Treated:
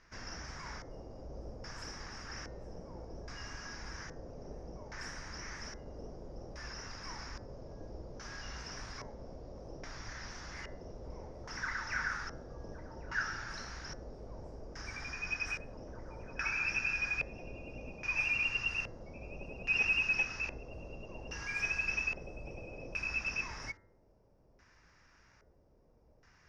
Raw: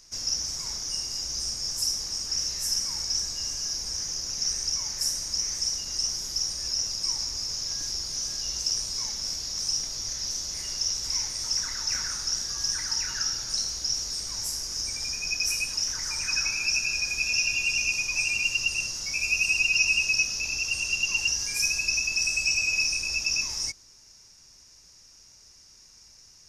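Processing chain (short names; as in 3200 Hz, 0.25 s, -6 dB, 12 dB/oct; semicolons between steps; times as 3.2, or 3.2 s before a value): tube stage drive 20 dB, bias 0.2; LFO low-pass square 0.61 Hz 560–1700 Hz; de-hum 96.21 Hz, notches 22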